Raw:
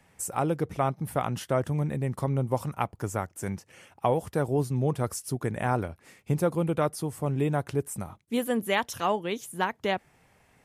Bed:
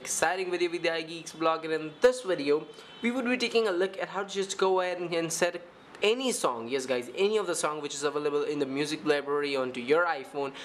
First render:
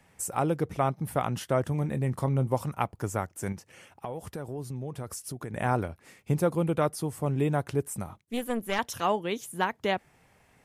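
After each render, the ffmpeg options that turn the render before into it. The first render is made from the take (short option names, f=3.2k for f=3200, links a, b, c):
-filter_complex "[0:a]asettb=1/sr,asplit=3[a][b][c];[a]atrim=end=1.694[d];[b]atrim=start=1.69:end=2.47,asetpts=PTS-STARTPTS,afade=t=in:d=0.004:c=qsin,afade=t=out:st=0.776:d=0.004:c=qsin,asplit=2[e][f];[f]adelay=23,volume=-13dB[g];[e][g]amix=inputs=2:normalize=0,atrim=end_sample=34398[h];[c]atrim=start=2.466[i];[d][h]acrossfade=d=0.004:c1=hsin:c2=qsin[j];[j][i]acrossfade=d=0.004:c1=qsin:c2=hsin,asettb=1/sr,asplit=3[k][l][m];[k]atrim=end=3.524[n];[l]atrim=start=3.52:end=5.54,asetpts=PTS-STARTPTS,afade=t=in:d=0.004:c=qsin,afade=t=out:st=2.016:d=0.004:c=qsin,acompressor=threshold=-34dB:ratio=4:attack=3.2:release=140:knee=1:detection=peak[o];[m]atrim=start=5.536[p];[n][o]acrossfade=d=0.004:c1=hsin:c2=qsin[q];[q][p]acrossfade=d=0.004:c1=qsin:c2=hsin,asettb=1/sr,asplit=3[r][s][t];[r]atrim=end=8.214[u];[s]atrim=start=8.21:end=8.79,asetpts=PTS-STARTPTS,afade=t=in:d=0.004:c=qsin,afade=t=out:st=0.576:d=0.004:c=qsin,aeval=exprs='(tanh(8.91*val(0)+0.8)-tanh(0.8))/8.91':c=same[v];[t]atrim=start=8.786[w];[u][v]acrossfade=d=0.004:c1=hsin:c2=qsin[x];[x][w]acrossfade=d=0.004:c1=qsin:c2=hsin"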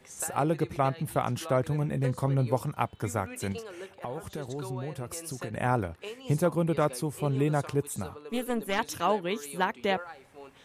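-filter_complex "[1:a]volume=-15.5dB[a];[0:a][a]amix=inputs=2:normalize=0"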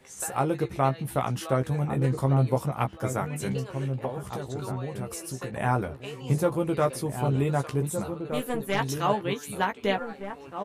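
-filter_complex "[0:a]asplit=2[a][b];[b]adelay=15,volume=-5.5dB[c];[a][c]amix=inputs=2:normalize=0,asplit=2[d][e];[e]adelay=1516,volume=-7dB,highshelf=f=4k:g=-34.1[f];[d][f]amix=inputs=2:normalize=0"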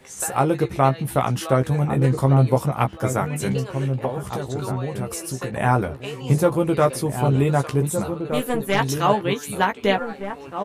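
-af "volume=6.5dB"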